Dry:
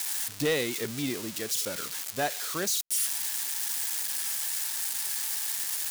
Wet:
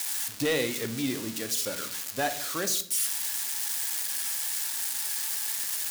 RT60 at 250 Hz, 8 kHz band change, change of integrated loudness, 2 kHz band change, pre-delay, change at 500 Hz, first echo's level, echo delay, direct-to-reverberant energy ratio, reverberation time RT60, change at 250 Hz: 0.85 s, +0.5 dB, +0.5 dB, +1.0 dB, 4 ms, +0.5 dB, no echo, no echo, 7.5 dB, 0.60 s, +2.0 dB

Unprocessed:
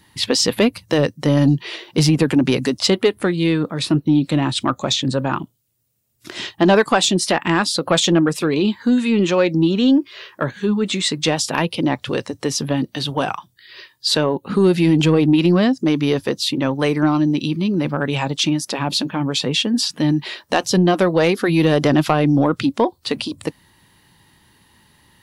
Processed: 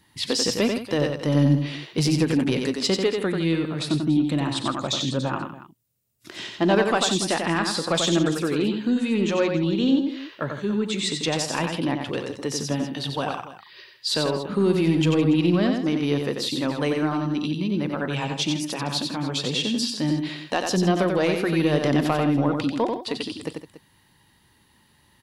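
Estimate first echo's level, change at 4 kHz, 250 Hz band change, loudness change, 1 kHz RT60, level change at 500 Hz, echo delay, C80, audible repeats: -19.5 dB, -5.5 dB, -5.5 dB, -5.5 dB, no reverb, -5.5 dB, 41 ms, no reverb, 4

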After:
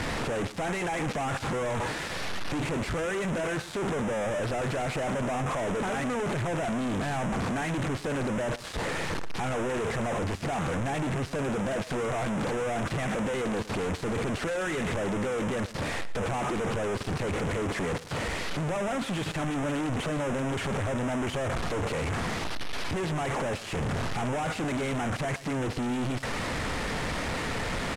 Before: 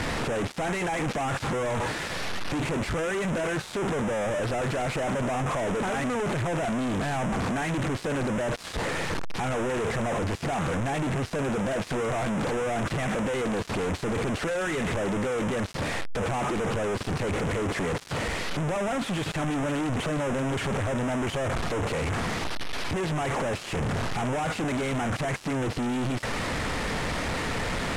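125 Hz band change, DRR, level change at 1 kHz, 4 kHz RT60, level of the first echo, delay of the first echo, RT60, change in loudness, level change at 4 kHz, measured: -2.0 dB, no reverb, -2.0 dB, no reverb, -16.5 dB, 115 ms, no reverb, -2.0 dB, -2.0 dB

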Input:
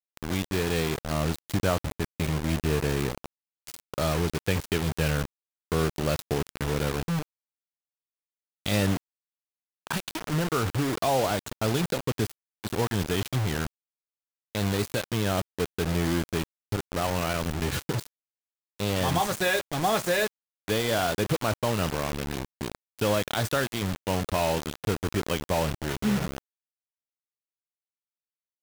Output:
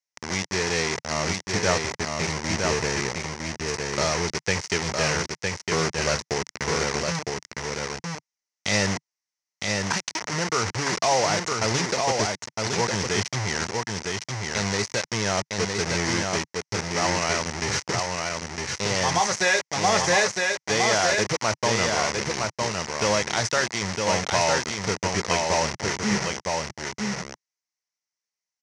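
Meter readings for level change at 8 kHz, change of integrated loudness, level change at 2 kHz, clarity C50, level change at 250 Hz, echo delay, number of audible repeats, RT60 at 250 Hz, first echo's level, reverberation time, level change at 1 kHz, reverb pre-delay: +11.0 dB, +3.5 dB, +8.0 dB, no reverb, -1.0 dB, 959 ms, 1, no reverb, -3.5 dB, no reverb, +5.5 dB, no reverb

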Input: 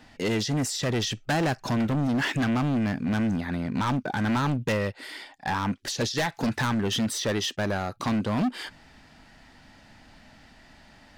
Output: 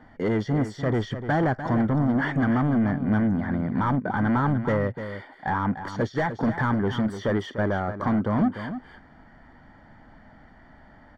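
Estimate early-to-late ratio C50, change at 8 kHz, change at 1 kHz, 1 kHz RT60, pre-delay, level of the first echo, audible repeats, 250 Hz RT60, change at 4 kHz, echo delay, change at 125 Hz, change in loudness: no reverb, under -15 dB, +3.0 dB, no reverb, no reverb, -10.5 dB, 1, no reverb, -12.0 dB, 297 ms, +3.0 dB, +2.0 dB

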